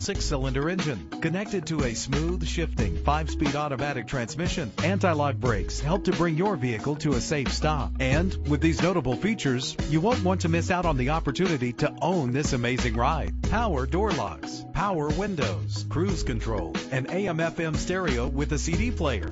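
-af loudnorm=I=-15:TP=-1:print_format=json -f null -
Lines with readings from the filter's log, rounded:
"input_i" : "-26.7",
"input_tp" : "-9.6",
"input_lra" : "2.6",
"input_thresh" : "-36.7",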